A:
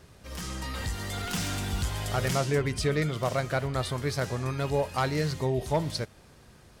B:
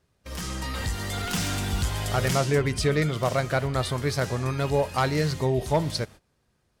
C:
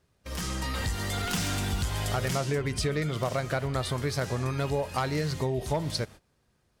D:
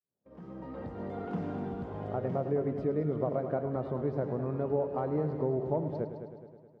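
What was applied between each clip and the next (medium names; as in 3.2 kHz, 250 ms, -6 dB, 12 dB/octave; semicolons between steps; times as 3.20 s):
gate -45 dBFS, range -20 dB; trim +3.5 dB
compression, threshold -25 dBFS, peak gain reduction 7 dB
fade-in on the opening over 0.98 s; Butterworth band-pass 350 Hz, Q 0.62; multi-head delay 105 ms, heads first and second, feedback 56%, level -12 dB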